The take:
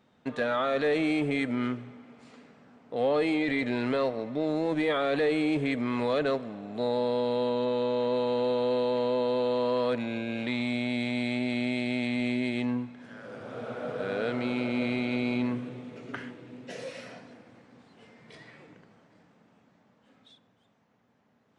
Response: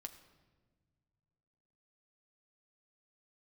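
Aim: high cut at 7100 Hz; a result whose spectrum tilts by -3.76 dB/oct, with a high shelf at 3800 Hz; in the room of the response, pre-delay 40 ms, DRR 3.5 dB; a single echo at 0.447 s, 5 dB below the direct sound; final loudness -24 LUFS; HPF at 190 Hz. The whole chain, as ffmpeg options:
-filter_complex "[0:a]highpass=190,lowpass=7.1k,highshelf=f=3.8k:g=-4,aecho=1:1:447:0.562,asplit=2[a][b];[1:a]atrim=start_sample=2205,adelay=40[c];[b][c]afir=irnorm=-1:irlink=0,volume=1.5dB[d];[a][d]amix=inputs=2:normalize=0,volume=3dB"

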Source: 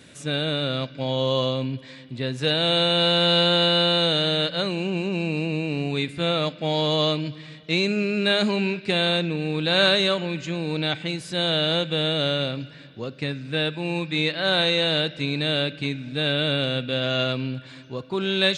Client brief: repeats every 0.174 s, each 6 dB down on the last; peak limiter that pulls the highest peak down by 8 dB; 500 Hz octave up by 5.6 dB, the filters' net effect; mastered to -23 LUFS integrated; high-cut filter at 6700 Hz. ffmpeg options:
-af "lowpass=6.7k,equalizer=f=500:t=o:g=6.5,alimiter=limit=-14.5dB:level=0:latency=1,aecho=1:1:174|348|522|696|870|1044:0.501|0.251|0.125|0.0626|0.0313|0.0157,volume=-0.5dB"

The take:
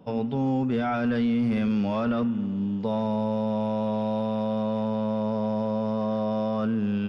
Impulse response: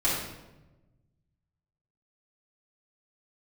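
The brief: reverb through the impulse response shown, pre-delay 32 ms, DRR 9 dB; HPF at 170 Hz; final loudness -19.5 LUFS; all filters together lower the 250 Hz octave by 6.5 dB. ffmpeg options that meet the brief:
-filter_complex "[0:a]highpass=170,equalizer=f=250:t=o:g=-6,asplit=2[a][b];[1:a]atrim=start_sample=2205,adelay=32[c];[b][c]afir=irnorm=-1:irlink=0,volume=-20.5dB[d];[a][d]amix=inputs=2:normalize=0,volume=10dB"

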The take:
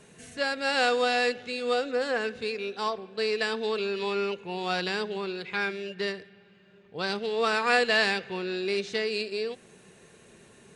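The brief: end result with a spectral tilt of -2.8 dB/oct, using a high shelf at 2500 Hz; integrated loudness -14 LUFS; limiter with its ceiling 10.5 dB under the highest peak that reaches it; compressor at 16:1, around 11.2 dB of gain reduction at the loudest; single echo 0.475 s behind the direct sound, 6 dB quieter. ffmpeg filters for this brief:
-af "highshelf=f=2.5k:g=-7,acompressor=threshold=-32dB:ratio=16,alimiter=level_in=8.5dB:limit=-24dB:level=0:latency=1,volume=-8.5dB,aecho=1:1:475:0.501,volume=26.5dB"

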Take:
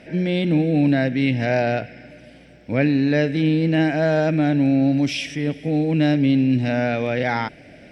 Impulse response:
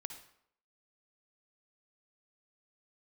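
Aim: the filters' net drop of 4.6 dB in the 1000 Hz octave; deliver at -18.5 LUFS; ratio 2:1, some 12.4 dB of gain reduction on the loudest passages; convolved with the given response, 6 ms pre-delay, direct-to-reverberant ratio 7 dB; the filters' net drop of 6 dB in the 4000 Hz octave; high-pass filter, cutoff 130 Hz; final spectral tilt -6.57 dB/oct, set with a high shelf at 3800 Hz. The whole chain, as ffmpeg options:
-filter_complex "[0:a]highpass=130,equalizer=f=1k:t=o:g=-7,highshelf=f=3.8k:g=-3,equalizer=f=4k:t=o:g=-6,acompressor=threshold=-39dB:ratio=2,asplit=2[a][b];[1:a]atrim=start_sample=2205,adelay=6[c];[b][c]afir=irnorm=-1:irlink=0,volume=-4dB[d];[a][d]amix=inputs=2:normalize=0,volume=13.5dB"

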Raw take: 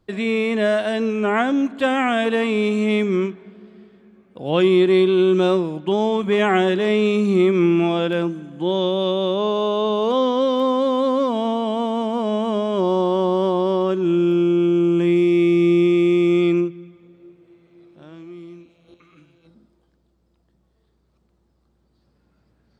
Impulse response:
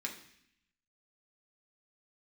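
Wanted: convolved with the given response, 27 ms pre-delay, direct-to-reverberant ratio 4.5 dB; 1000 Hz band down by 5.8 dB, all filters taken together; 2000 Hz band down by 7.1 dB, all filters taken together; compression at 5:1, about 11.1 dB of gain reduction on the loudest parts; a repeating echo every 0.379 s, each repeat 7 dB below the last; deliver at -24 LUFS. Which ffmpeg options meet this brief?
-filter_complex "[0:a]equalizer=f=1k:t=o:g=-6,equalizer=f=2k:t=o:g=-7.5,acompressor=threshold=-26dB:ratio=5,aecho=1:1:379|758|1137|1516|1895:0.447|0.201|0.0905|0.0407|0.0183,asplit=2[a][b];[1:a]atrim=start_sample=2205,adelay=27[c];[b][c]afir=irnorm=-1:irlink=0,volume=-5.5dB[d];[a][d]amix=inputs=2:normalize=0,volume=3dB"

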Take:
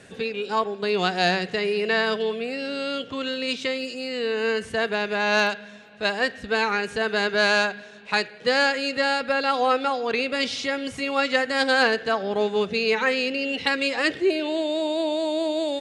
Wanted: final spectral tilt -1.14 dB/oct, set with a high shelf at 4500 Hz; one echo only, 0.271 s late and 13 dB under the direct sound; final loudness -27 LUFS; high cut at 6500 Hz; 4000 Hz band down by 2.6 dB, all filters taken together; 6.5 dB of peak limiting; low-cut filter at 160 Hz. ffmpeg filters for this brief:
-af "highpass=160,lowpass=6.5k,equalizer=f=4k:t=o:g=-5,highshelf=f=4.5k:g=4.5,alimiter=limit=-14dB:level=0:latency=1,aecho=1:1:271:0.224,volume=-1.5dB"

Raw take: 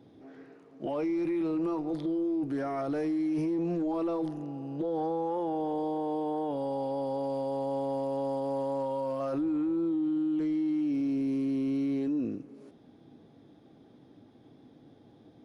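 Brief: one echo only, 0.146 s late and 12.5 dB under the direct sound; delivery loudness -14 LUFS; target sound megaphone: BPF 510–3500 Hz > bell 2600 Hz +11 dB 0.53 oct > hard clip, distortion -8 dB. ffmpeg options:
-af "highpass=510,lowpass=3.5k,equalizer=f=2.6k:t=o:w=0.53:g=11,aecho=1:1:146:0.237,asoftclip=type=hard:threshold=-39dB,volume=27.5dB"

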